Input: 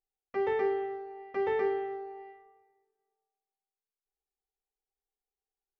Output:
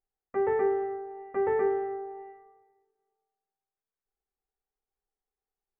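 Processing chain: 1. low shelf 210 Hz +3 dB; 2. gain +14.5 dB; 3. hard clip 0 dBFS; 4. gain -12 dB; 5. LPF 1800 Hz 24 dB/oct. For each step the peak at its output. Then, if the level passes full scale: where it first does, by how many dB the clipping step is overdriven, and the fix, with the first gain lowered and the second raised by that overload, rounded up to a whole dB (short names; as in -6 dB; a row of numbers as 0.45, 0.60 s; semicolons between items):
-19.0, -4.5, -4.5, -16.5, -17.0 dBFS; no overload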